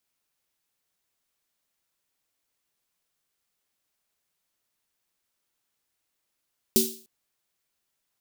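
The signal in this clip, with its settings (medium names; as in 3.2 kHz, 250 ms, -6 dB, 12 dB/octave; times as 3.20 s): snare drum length 0.30 s, tones 230 Hz, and 380 Hz, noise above 3.5 kHz, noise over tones 0.5 dB, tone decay 0.37 s, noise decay 0.43 s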